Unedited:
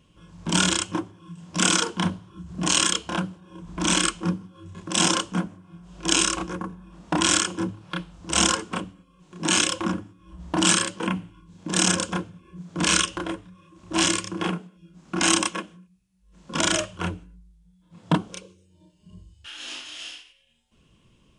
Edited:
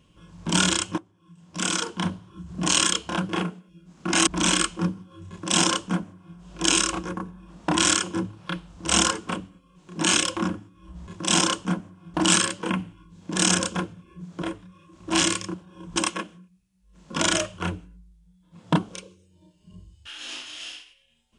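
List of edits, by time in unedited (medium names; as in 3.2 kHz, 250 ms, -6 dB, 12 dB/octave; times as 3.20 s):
0.98–2.42 s: fade in, from -19.5 dB
3.29–3.71 s: swap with 14.37–15.35 s
4.74–5.81 s: copy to 10.51 s
12.79–13.25 s: delete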